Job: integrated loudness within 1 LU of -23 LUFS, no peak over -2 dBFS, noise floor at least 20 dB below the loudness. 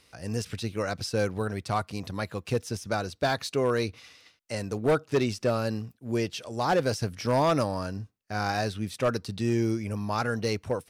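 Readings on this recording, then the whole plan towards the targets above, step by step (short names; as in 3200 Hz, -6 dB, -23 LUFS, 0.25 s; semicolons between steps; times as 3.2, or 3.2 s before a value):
clipped 0.7%; flat tops at -18.0 dBFS; loudness -29.0 LUFS; peak -18.0 dBFS; loudness target -23.0 LUFS
-> clip repair -18 dBFS; gain +6 dB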